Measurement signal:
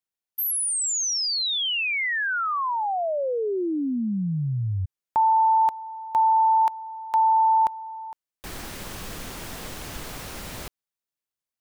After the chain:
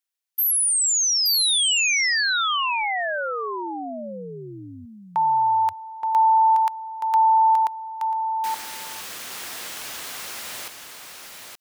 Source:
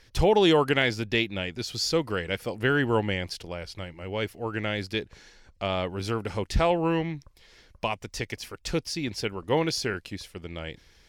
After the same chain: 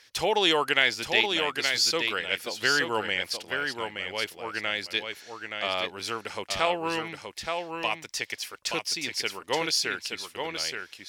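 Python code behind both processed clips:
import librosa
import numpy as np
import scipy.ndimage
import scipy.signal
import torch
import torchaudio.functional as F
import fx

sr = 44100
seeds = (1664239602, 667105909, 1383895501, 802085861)

p1 = fx.highpass(x, sr, hz=1500.0, slope=6)
p2 = p1 + fx.echo_single(p1, sr, ms=874, db=-5.5, dry=0)
y = p2 * librosa.db_to_amplitude(5.0)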